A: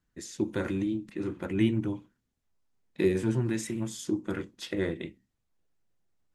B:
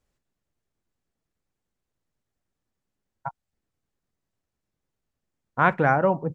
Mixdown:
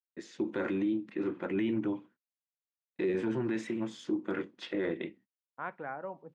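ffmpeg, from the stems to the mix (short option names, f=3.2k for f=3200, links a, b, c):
-filter_complex "[0:a]agate=range=-32dB:threshold=-56dB:ratio=16:detection=peak,volume=2dB[a];[1:a]agate=range=-33dB:threshold=-33dB:ratio=3:detection=peak,acrusher=bits=9:mix=0:aa=0.000001,volume=-19dB[b];[a][b]amix=inputs=2:normalize=0,highpass=250,lowpass=2.8k,alimiter=limit=-23dB:level=0:latency=1:release=19"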